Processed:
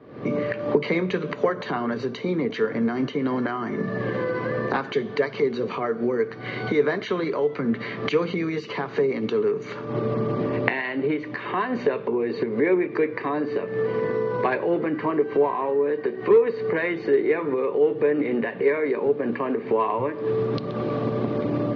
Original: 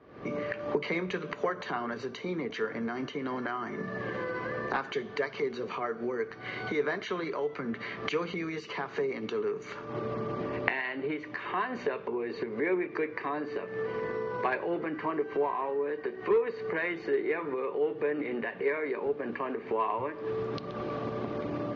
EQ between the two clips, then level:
graphic EQ with 10 bands 125 Hz +12 dB, 250 Hz +9 dB, 500 Hz +8 dB, 1,000 Hz +4 dB, 2,000 Hz +4 dB, 4,000 Hz +7 dB
−1.5 dB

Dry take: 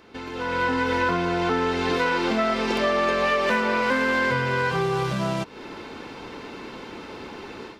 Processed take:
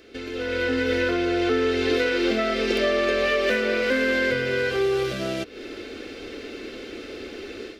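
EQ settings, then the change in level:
phaser with its sweep stopped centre 390 Hz, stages 4
dynamic equaliser 7,900 Hz, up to −5 dB, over −54 dBFS, Q 1.1
+4.0 dB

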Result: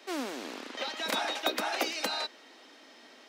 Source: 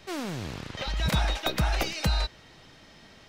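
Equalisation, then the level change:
elliptic high-pass filter 250 Hz, stop band 50 dB
0.0 dB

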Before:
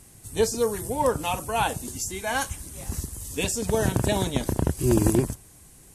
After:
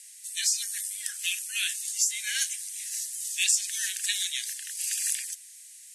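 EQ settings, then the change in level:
Butterworth high-pass 1,700 Hz 72 dB per octave
low-pass filter 8,800 Hz 12 dB per octave
high-shelf EQ 2,700 Hz +11.5 dB
−2.0 dB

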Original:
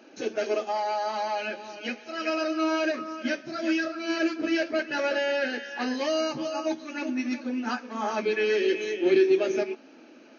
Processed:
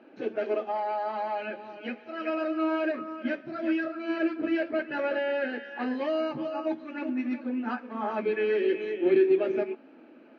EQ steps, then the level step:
high-frequency loss of the air 480 metres
0.0 dB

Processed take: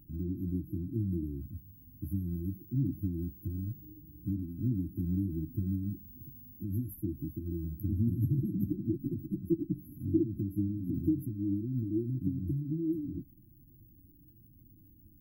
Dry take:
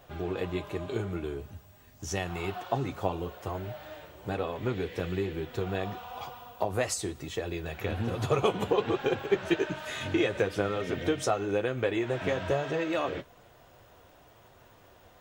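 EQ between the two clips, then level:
linear-phase brick-wall band-stop 340–11,000 Hz
parametric band 75 Hz −2.5 dB
+4.0 dB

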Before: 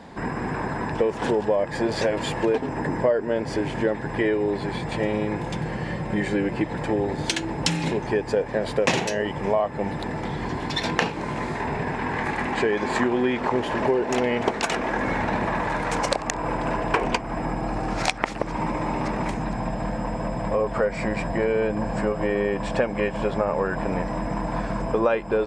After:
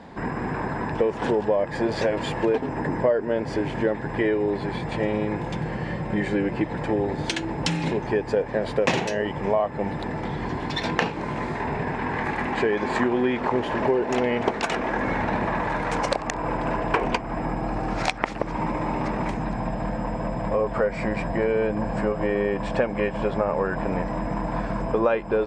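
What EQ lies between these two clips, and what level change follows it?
low-pass filter 3,900 Hz 6 dB per octave
0.0 dB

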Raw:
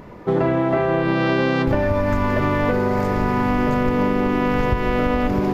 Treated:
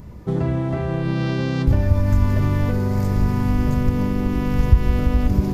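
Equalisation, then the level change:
bass and treble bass +14 dB, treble +15 dB
parametric band 65 Hz +9.5 dB 0.89 octaves
−10.0 dB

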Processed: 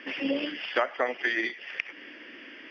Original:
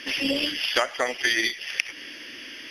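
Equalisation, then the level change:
high-frequency loss of the air 280 metres
three-way crossover with the lows and the highs turned down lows −23 dB, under 170 Hz, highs −16 dB, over 6,600 Hz
parametric band 4,100 Hz −9.5 dB 0.85 octaves
0.0 dB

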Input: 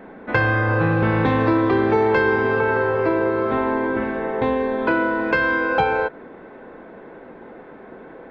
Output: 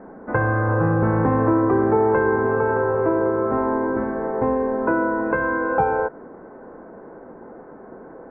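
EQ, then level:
low-pass filter 1,400 Hz 24 dB per octave
0.0 dB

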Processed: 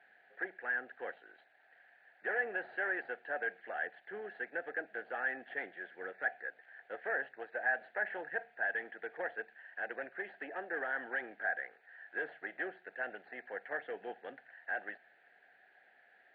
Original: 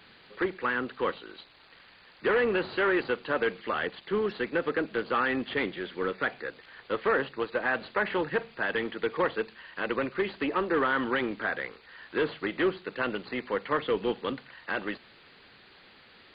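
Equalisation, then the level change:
pair of resonant band-passes 1,100 Hz, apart 1.2 octaves
high-frequency loss of the air 260 metres
+1.0 dB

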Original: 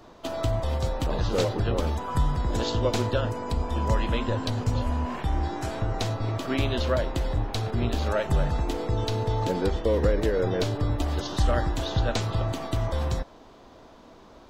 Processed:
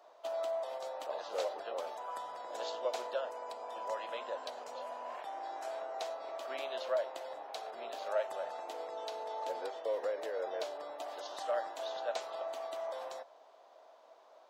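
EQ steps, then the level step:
four-pole ladder high-pass 550 Hz, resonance 55%
−2.5 dB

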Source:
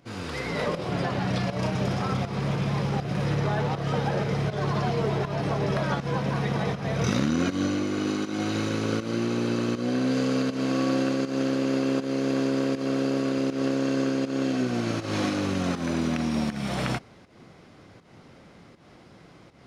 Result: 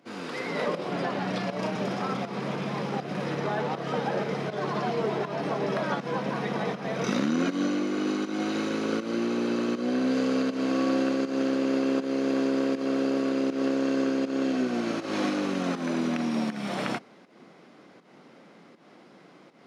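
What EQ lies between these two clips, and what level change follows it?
high-pass filter 190 Hz 24 dB per octave
high-shelf EQ 4,400 Hz −6 dB
0.0 dB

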